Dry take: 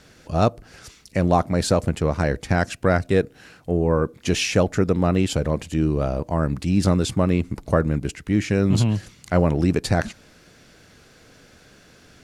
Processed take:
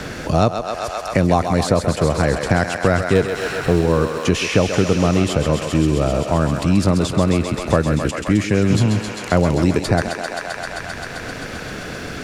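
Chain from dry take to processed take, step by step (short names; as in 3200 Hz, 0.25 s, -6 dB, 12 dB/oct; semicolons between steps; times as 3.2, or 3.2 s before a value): 3.15–3.81 power-law curve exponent 0.7; thinning echo 0.131 s, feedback 81%, high-pass 430 Hz, level -7 dB; three-band squash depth 70%; gain +3 dB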